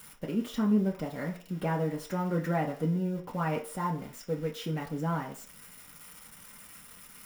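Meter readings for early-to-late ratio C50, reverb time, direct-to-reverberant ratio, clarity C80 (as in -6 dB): 11.5 dB, 0.45 s, -3.5 dB, 15.5 dB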